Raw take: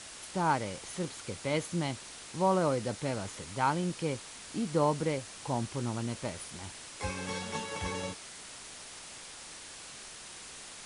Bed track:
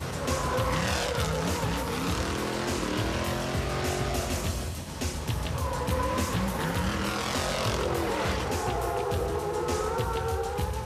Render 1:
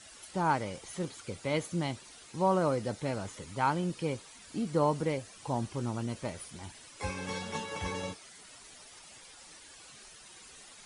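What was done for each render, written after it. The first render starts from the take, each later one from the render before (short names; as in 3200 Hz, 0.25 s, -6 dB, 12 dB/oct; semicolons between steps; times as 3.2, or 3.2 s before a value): denoiser 11 dB, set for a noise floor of -48 dBFS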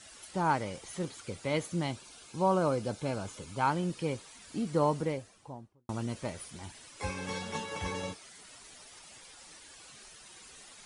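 1.9–3.66 Butterworth band-stop 1900 Hz, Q 7.4; 4.85–5.89 studio fade out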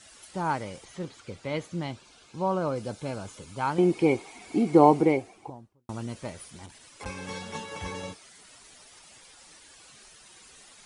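0.85–2.76 air absorption 67 m; 3.78–5.5 small resonant body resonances 360/740/2200 Hz, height 17 dB, ringing for 20 ms; 6.66–7.06 core saturation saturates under 1600 Hz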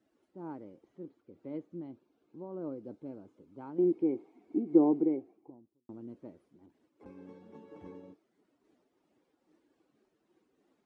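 band-pass 310 Hz, Q 3.1; noise-modulated level, depth 60%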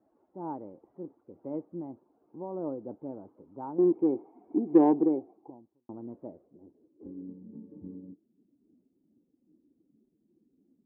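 low-pass sweep 870 Hz -> 240 Hz, 6.12–7.38; in parallel at -8.5 dB: soft clip -20.5 dBFS, distortion -11 dB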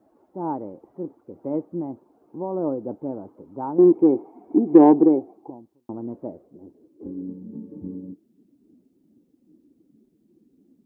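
gain +9.5 dB; limiter -2 dBFS, peak gain reduction 2 dB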